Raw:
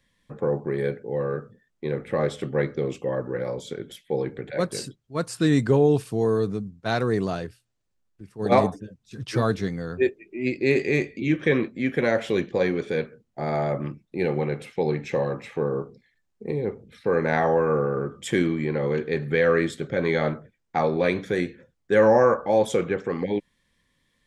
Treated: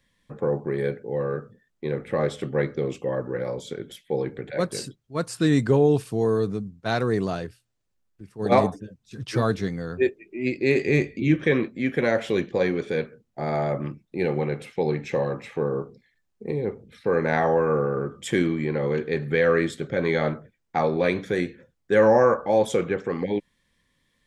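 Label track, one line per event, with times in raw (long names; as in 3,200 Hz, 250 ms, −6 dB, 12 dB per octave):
10.850000	11.440000	low-shelf EQ 180 Hz +8 dB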